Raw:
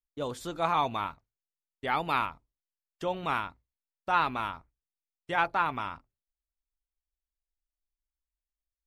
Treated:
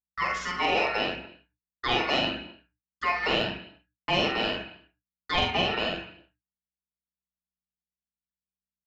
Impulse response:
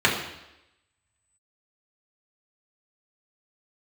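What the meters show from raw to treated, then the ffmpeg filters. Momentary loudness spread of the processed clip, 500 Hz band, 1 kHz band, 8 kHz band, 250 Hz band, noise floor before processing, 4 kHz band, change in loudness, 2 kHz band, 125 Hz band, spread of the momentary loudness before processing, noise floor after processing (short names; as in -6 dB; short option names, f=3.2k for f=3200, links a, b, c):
14 LU, +5.5 dB, -0.5 dB, n/a, +6.0 dB, under -85 dBFS, +14.5 dB, +4.0 dB, +6.0 dB, +3.5 dB, 12 LU, under -85 dBFS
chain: -filter_complex "[0:a]aeval=exprs='val(0)*sin(2*PI*1600*n/s)':c=same,aeval=exprs='val(0)+0.00126*(sin(2*PI*60*n/s)+sin(2*PI*2*60*n/s)/2+sin(2*PI*3*60*n/s)/3+sin(2*PI*4*60*n/s)/4+sin(2*PI*5*60*n/s)/5)':c=same,asoftclip=type=tanh:threshold=-16dB,agate=range=-55dB:threshold=-50dB:ratio=16:detection=peak,acompressor=threshold=-32dB:ratio=3,aecho=1:1:45|72:0.668|0.211,asplit=2[a][b];[1:a]atrim=start_sample=2205,afade=t=out:st=0.35:d=0.01,atrim=end_sample=15876[c];[b][c]afir=irnorm=-1:irlink=0,volume=-21.5dB[d];[a][d]amix=inputs=2:normalize=0,aresample=16000,aresample=44100,aphaser=in_gain=1:out_gain=1:delay=2.8:decay=0.21:speed=0.8:type=triangular,volume=7dB"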